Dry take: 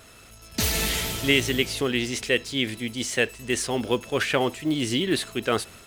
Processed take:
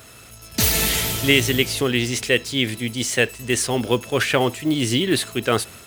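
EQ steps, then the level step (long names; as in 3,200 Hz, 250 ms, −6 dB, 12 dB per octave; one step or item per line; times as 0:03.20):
high-pass filter 47 Hz
parametric band 120 Hz +6 dB 0.27 octaves
high-shelf EQ 11,000 Hz +8 dB
+4.0 dB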